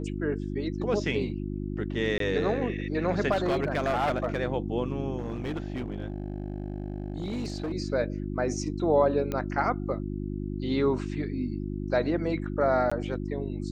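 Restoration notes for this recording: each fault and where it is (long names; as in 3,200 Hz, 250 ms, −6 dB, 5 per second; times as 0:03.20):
mains hum 50 Hz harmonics 7 −33 dBFS
0:02.18–0:02.20: drop-out 23 ms
0:03.31–0:04.38: clipping −21.5 dBFS
0:05.18–0:07.72: clipping −28 dBFS
0:09.32: click −18 dBFS
0:12.90–0:12.91: drop-out 15 ms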